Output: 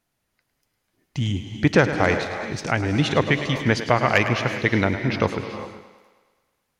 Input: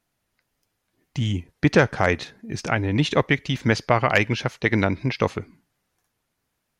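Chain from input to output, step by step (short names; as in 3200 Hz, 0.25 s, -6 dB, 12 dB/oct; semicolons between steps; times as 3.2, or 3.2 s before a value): thinning echo 0.106 s, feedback 63%, high-pass 180 Hz, level -11.5 dB; non-linear reverb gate 0.42 s rising, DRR 9 dB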